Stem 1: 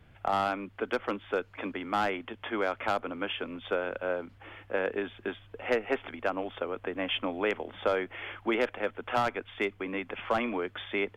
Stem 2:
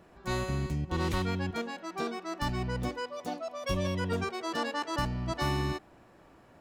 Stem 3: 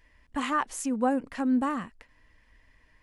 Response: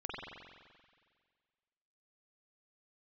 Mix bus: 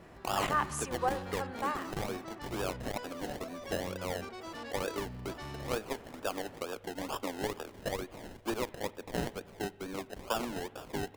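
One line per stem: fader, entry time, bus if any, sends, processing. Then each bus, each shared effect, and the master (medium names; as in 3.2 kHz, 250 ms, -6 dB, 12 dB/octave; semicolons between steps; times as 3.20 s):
-5.5 dB, 0.00 s, send -20 dB, decimation with a swept rate 30×, swing 60% 2.2 Hz
-9.5 dB, 0.00 s, no send, saturation -29.5 dBFS, distortion -12 dB; level flattener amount 50%
-3.0 dB, 0.00 s, send -13 dB, high-pass 530 Hz 24 dB/octave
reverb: on, RT60 1.8 s, pre-delay 44 ms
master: transformer saturation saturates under 310 Hz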